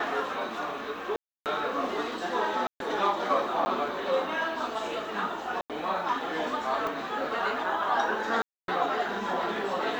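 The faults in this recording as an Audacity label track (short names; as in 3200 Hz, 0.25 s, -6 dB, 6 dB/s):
1.160000	1.460000	gap 0.298 s
2.670000	2.800000	gap 0.132 s
3.650000	3.660000	gap 10 ms
5.610000	5.700000	gap 87 ms
6.870000	6.870000	pop -20 dBFS
8.420000	8.680000	gap 0.262 s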